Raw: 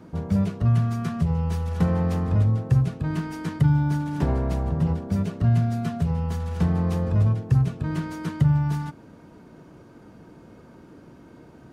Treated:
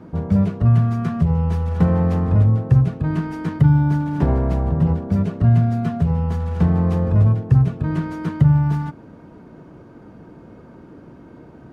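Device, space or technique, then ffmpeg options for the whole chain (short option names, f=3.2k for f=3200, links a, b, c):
through cloth: -af "highshelf=f=3.2k:g=-13,volume=5.5dB"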